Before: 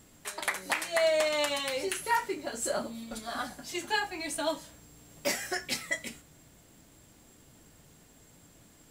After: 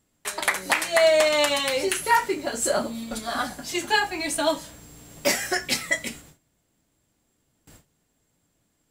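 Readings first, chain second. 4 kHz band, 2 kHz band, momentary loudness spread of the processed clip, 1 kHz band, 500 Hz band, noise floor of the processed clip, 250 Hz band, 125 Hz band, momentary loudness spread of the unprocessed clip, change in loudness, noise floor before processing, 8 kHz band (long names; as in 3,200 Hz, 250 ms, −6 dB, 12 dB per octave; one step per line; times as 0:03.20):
+8.0 dB, +8.0 dB, 11 LU, +8.0 dB, +8.0 dB, −72 dBFS, +8.0 dB, +7.5 dB, 13 LU, +8.0 dB, −59 dBFS, +8.0 dB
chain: noise gate with hold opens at −45 dBFS
level +8 dB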